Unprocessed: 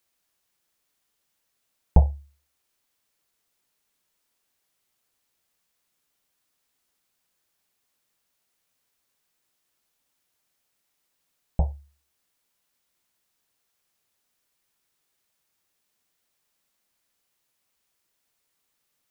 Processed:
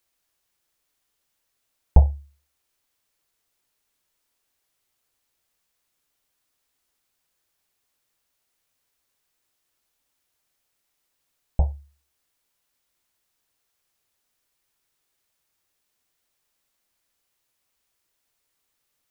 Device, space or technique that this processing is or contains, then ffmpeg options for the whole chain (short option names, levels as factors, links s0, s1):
low shelf boost with a cut just above: -af "lowshelf=f=81:g=5,equalizer=f=190:t=o:w=0.51:g=-5"